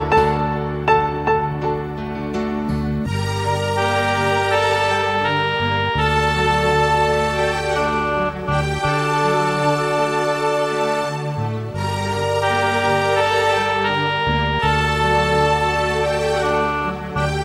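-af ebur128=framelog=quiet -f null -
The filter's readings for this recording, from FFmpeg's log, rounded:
Integrated loudness:
  I:         -18.7 LUFS
  Threshold: -28.7 LUFS
Loudness range:
  LRA:         3.0 LU
  Threshold: -38.6 LUFS
  LRA low:   -20.3 LUFS
  LRA high:  -17.3 LUFS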